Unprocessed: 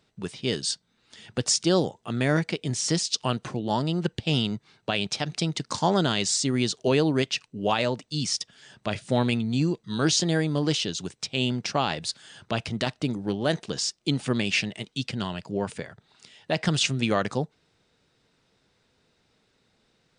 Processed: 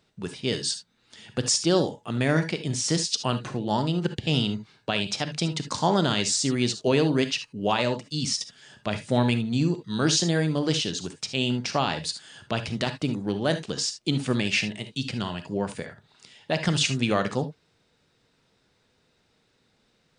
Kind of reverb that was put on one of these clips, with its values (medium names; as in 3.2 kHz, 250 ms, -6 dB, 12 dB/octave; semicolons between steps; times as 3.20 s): gated-style reverb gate 90 ms rising, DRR 9 dB